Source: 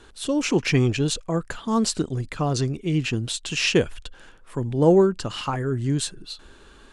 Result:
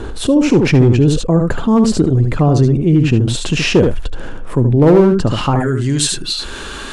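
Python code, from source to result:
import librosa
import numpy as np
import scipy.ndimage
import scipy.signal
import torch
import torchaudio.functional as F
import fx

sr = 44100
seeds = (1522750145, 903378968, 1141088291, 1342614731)

y = fx.tilt_shelf(x, sr, db=fx.steps((0.0, 8.5), (5.59, -3.0)), hz=1100.0)
y = np.clip(y, -10.0 ** (-6.5 / 20.0), 10.0 ** (-6.5 / 20.0))
y = y + 10.0 ** (-7.5 / 20.0) * np.pad(y, (int(74 * sr / 1000.0), 0))[:len(y)]
y = fx.env_flatten(y, sr, amount_pct=50)
y = y * librosa.db_to_amplitude(1.0)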